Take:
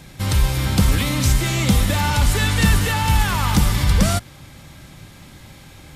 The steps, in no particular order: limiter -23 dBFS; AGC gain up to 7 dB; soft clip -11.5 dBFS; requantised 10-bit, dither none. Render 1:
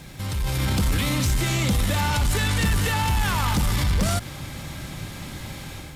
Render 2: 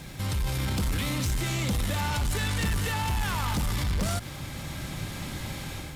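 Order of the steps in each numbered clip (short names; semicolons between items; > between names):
soft clip > limiter > AGC > requantised; AGC > soft clip > limiter > requantised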